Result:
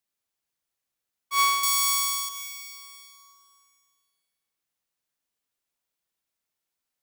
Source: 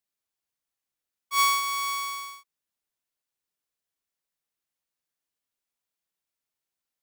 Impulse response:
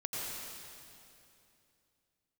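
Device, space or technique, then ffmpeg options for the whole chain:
ducked reverb: -filter_complex "[0:a]asettb=1/sr,asplit=3[link_01][link_02][link_03];[link_01]atrim=end=1.634[link_04];[link_02]atrim=start=1.63:end=2.29,asetpts=PTS-STARTPTS,afade=type=in:duration=0.004:curve=qsin,afade=type=out:start_time=0.656:duration=0.004:curve=qsin,bass=frequency=250:gain=-9,treble=frequency=4000:gain=13[link_05];[link_03]atrim=start=2.286[link_06];[link_04][link_05]acrossfade=duration=0.004:curve1=hsin:curve2=qsin[link_07];[link_07][link_06]acrossfade=duration=0.004:curve1=qsin:curve2=hsin,asplit=3[link_08][link_09][link_10];[1:a]atrim=start_sample=2205[link_11];[link_09][link_11]afir=irnorm=-1:irlink=0[link_12];[link_10]apad=whole_len=309668[link_13];[link_12][link_13]sidechaincompress=threshold=-38dB:ratio=8:attack=46:release=169,volume=-8.5dB[link_14];[link_08][link_14]amix=inputs=2:normalize=0"

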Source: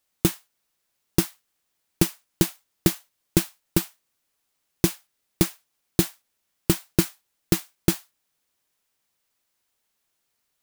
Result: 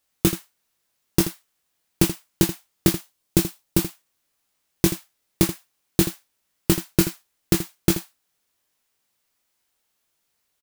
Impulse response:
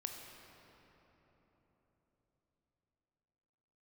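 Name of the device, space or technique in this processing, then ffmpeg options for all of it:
slapback doubling: -filter_complex "[0:a]asettb=1/sr,asplit=3[link_01][link_02][link_03];[link_01]atrim=end=2.934[link_04];[link_02]atrim=start=2.93:end=3.81,asetpts=PTS-STARTPTS,afade=type=in:duration=0.004:curve=qsin,afade=type=out:start_time=0.876:duration=0.004:curve=qsin,equalizer=frequency=1600:width_type=o:width=1.7:gain=-3.5[link_05];[link_03]atrim=start=3.806[link_06];[link_04][link_05]acrossfade=duration=0.004:curve1=hsin:curve2=qsin[link_07];[link_07][link_06]acrossfade=duration=0.004:curve1=qsin:curve2=hsin,asplit=3[link_08][link_09][link_10];[link_09]adelay=21,volume=-6.5dB[link_11];[link_10]adelay=81,volume=-11.5dB[link_12];[link_08][link_11][link_12]amix=inputs=3:normalize=0,volume=1dB"

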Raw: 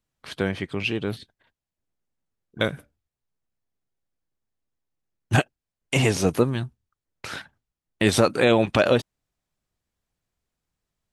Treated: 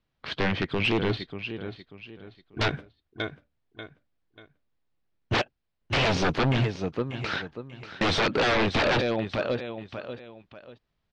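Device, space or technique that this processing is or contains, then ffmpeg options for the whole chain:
synthesiser wavefolder: -filter_complex "[0:a]asettb=1/sr,asplit=3[link_01][link_02][link_03];[link_01]atrim=end=1.094[link_04];[link_02]atrim=start=1.09:end=2.74,asetpts=PTS-STARTPTS,afade=type=in:duration=0.004:curve=qsin,afade=type=out:start_time=1.646:duration=0.004:curve=qsin,aecho=1:1:2.8:0.74,atrim=end_sample=72765[link_05];[link_03]atrim=start=2.736[link_06];[link_04][link_05]acrossfade=duration=0.004:curve1=hsin:curve2=qsin[link_07];[link_07][link_06]acrossfade=duration=0.004:curve1=qsin:curve2=hsin,aecho=1:1:589|1178|1767:0.224|0.0716|0.0229,aeval=exprs='0.0794*(abs(mod(val(0)/0.0794+3,4)-2)-1)':channel_layout=same,lowpass=frequency=4500:width=0.5412,lowpass=frequency=4500:width=1.3066,volume=4.5dB"

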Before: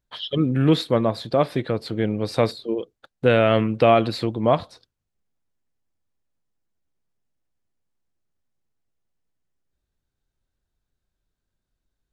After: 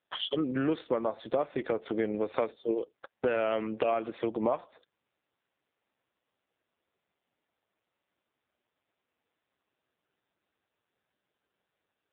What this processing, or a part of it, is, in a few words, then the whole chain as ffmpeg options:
voicemail: -af "highpass=340,lowpass=2900,acompressor=threshold=-33dB:ratio=6,volume=7dB" -ar 8000 -c:a libopencore_amrnb -b:a 5900

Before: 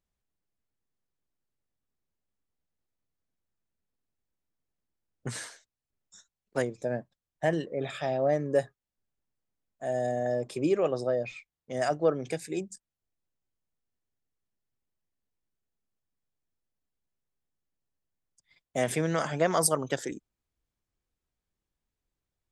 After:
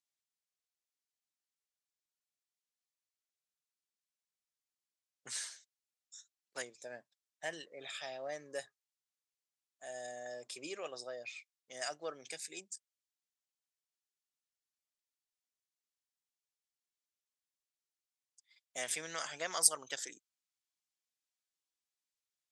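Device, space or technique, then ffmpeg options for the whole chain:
piezo pickup straight into a mixer: -af "lowpass=6700,aderivative,volume=5dB"

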